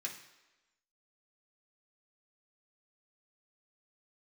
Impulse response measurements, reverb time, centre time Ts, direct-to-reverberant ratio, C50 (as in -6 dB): 1.1 s, 24 ms, -2.0 dB, 8.0 dB